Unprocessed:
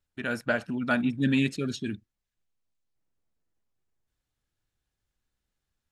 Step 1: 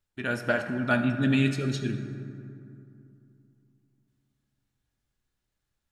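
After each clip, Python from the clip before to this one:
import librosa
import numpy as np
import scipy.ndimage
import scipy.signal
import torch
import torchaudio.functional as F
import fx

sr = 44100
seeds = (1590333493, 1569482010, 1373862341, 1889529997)

y = fx.rev_fdn(x, sr, rt60_s=2.6, lf_ratio=1.25, hf_ratio=0.45, size_ms=49.0, drr_db=5.0)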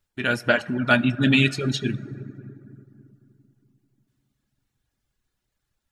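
y = fx.dereverb_blind(x, sr, rt60_s=0.76)
y = fx.dynamic_eq(y, sr, hz=3100.0, q=1.3, threshold_db=-47.0, ratio=4.0, max_db=8)
y = F.gain(torch.from_numpy(y), 5.5).numpy()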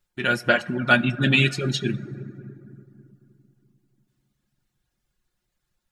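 y = x + 0.46 * np.pad(x, (int(5.6 * sr / 1000.0), 0))[:len(x)]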